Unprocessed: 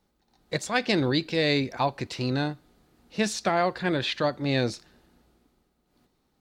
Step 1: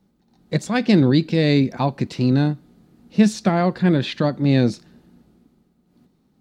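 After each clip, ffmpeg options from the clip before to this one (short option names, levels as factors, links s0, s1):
-af "equalizer=f=190:t=o:w=1.7:g=15"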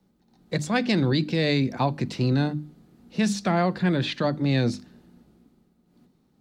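-filter_complex "[0:a]bandreject=f=50:t=h:w=6,bandreject=f=100:t=h:w=6,bandreject=f=150:t=h:w=6,bandreject=f=200:t=h:w=6,bandreject=f=250:t=h:w=6,bandreject=f=300:t=h:w=6,acrossover=split=120|730|1900[s0][s1][s2][s3];[s1]alimiter=limit=0.15:level=0:latency=1[s4];[s0][s4][s2][s3]amix=inputs=4:normalize=0,volume=0.841"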